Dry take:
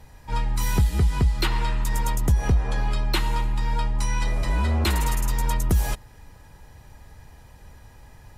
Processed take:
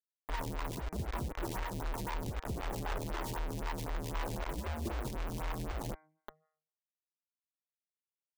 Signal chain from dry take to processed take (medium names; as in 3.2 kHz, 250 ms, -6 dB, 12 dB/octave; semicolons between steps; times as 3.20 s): delay 388 ms -21 dB; rotary cabinet horn 7.5 Hz, later 0.9 Hz, at 2.80 s; compression 2.5:1, threshold -36 dBFS, peak gain reduction 13.5 dB; low-pass 1.2 kHz 24 dB/octave; early reflections 14 ms -17.5 dB, 66 ms -14 dB; bit crusher 6-bit; peak limiter -33 dBFS, peak gain reduction 9 dB; de-hum 156.3 Hz, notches 15; lamp-driven phase shifter 3.9 Hz; trim +5.5 dB